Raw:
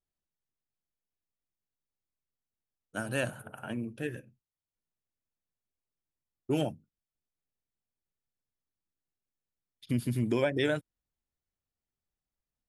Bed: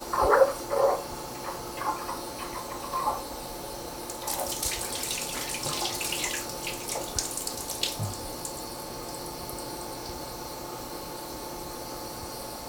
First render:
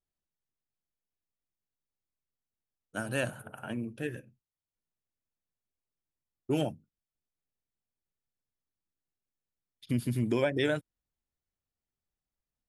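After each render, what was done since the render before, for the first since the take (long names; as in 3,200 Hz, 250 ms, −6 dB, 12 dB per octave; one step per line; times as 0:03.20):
no processing that can be heard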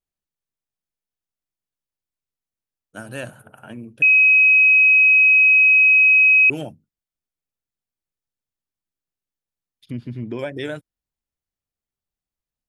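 0:04.02–0:06.50: beep over 2,540 Hz −9.5 dBFS
0:09.90–0:10.39: high-frequency loss of the air 220 metres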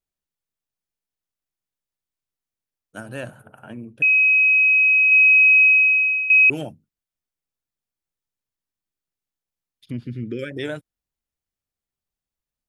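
0:03.00–0:05.12: high-shelf EQ 2,700 Hz −6 dB
0:05.63–0:06.30: fade out linear, to −14.5 dB
0:10.04–0:10.51: linear-phase brick-wall band-stop 560–1,200 Hz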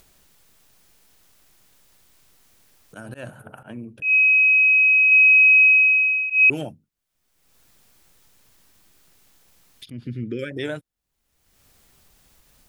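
volume swells 135 ms
upward compression, threshold −32 dBFS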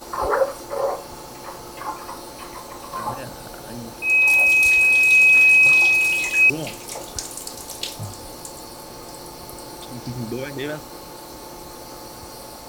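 mix in bed 0 dB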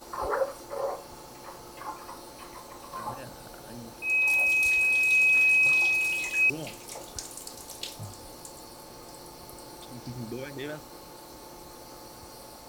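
level −8.5 dB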